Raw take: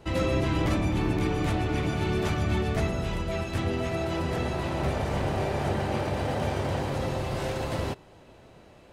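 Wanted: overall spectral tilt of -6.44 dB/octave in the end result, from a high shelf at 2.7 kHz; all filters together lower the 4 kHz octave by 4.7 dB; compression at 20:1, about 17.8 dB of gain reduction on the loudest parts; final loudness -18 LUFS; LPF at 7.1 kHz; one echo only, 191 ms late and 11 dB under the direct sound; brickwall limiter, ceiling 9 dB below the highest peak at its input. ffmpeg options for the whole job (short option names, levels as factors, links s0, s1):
-af "lowpass=7100,highshelf=f=2700:g=3,equalizer=f=4000:t=o:g=-8.5,acompressor=threshold=0.01:ratio=20,alimiter=level_in=4.73:limit=0.0631:level=0:latency=1,volume=0.211,aecho=1:1:191:0.282,volume=26.6"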